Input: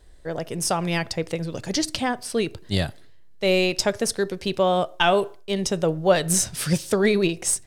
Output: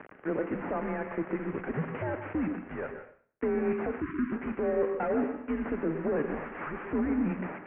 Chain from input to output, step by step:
linear delta modulator 16 kbit/s, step −34.5 dBFS
brickwall limiter −19.5 dBFS, peak gain reduction 8 dB
convolution reverb RT60 0.50 s, pre-delay 111 ms, DRR 7 dB
gain on a spectral selection 0:04.01–0:04.31, 540–1,100 Hz −27 dB
single-sideband voice off tune −150 Hz 320–2,300 Hz

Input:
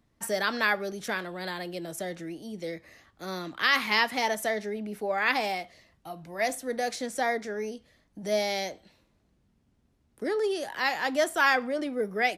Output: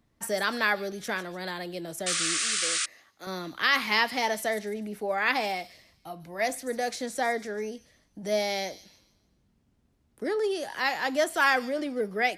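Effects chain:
delay with a high-pass on its return 148 ms, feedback 37%, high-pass 4,600 Hz, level −10 dB
0:02.06–0:02.86: sound drawn into the spectrogram noise 1,100–9,700 Hz −28 dBFS
0:02.38–0:03.27: high-pass filter 560 Hz 6 dB per octave

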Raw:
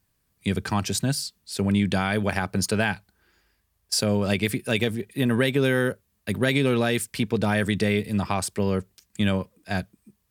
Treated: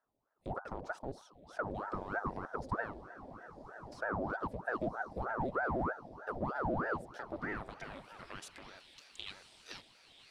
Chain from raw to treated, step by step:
flat-topped bell 1,700 Hz −10.5 dB
mains-hum notches 50/100/150/200/250/300/350 Hz
downward compressor 4 to 1, threshold −31 dBFS, peak gain reduction 11.5 dB
feedback delay with all-pass diffusion 1,090 ms, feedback 62%, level −14 dB
hard clipping −29 dBFS, distortion −13 dB
band-pass filter sweep 450 Hz → 3,000 Hz, 0:06.86–0:08.87
ring modulator whose carrier an LFO sweeps 640 Hz, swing 80%, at 3.2 Hz
level +6.5 dB

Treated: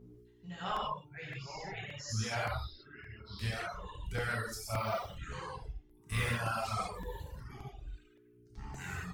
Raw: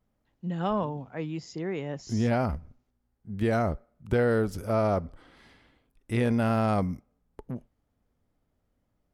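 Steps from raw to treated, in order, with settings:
0:04.72–0:06.24: one scale factor per block 7 bits
delay with pitch and tempo change per echo 612 ms, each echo −5 semitones, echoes 3, each echo −6 dB
0:03.47–0:04.15: downward compressor 12 to 1, threshold −27 dBFS, peak gain reduction 7 dB
guitar amp tone stack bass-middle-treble 10-0-10
hum with harmonics 60 Hz, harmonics 7, −58 dBFS −2 dB per octave
reverb reduction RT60 1.1 s
0:01.29–0:01.77: high-frequency loss of the air 150 metres
reverb whose tail is shaped and stops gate 220 ms flat, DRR −7.5 dB
reverb reduction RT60 1.4 s
regular buffer underruns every 0.57 s, samples 128, repeat, from 0:00.76

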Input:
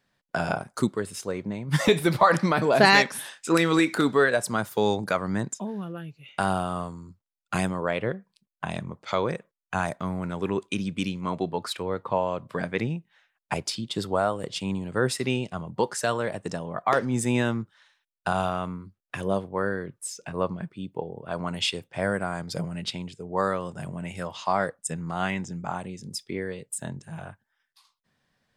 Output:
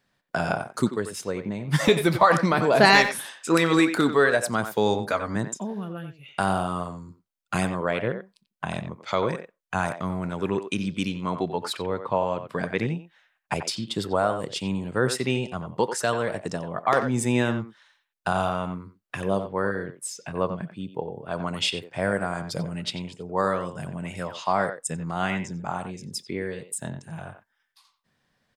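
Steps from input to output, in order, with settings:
0:04.94–0:05.36: notch comb filter 180 Hz
far-end echo of a speakerphone 90 ms, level −9 dB
level +1 dB

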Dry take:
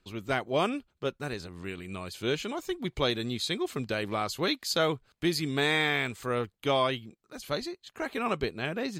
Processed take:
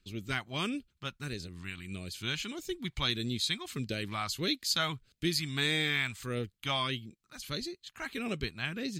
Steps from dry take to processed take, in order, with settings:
all-pass phaser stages 2, 1.6 Hz, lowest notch 420–1,000 Hz

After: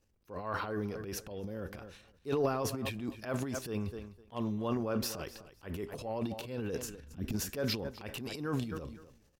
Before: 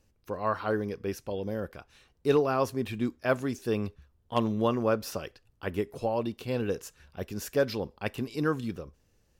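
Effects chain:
0:06.82–0:07.33: low shelf with overshoot 380 Hz +10.5 dB, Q 3
repeating echo 255 ms, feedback 18%, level −19.5 dB
transient designer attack −7 dB, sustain +12 dB
level −7.5 dB

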